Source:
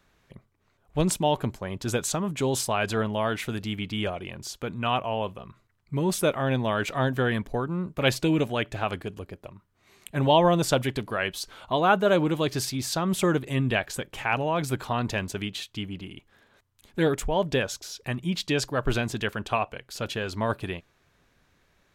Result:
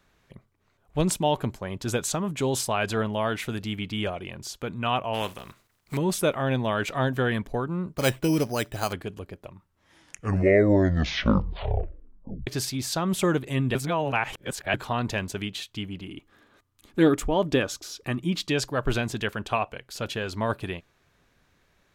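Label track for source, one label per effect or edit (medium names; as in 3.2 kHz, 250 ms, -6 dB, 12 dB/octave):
5.130000	5.960000	spectral contrast reduction exponent 0.55
7.940000	8.930000	careless resampling rate divided by 8×, down filtered, up hold
9.460000	9.460000	tape stop 3.01 s
13.750000	14.740000	reverse
16.080000	18.490000	small resonant body resonances 300/1200 Hz, height 9 dB, ringing for 35 ms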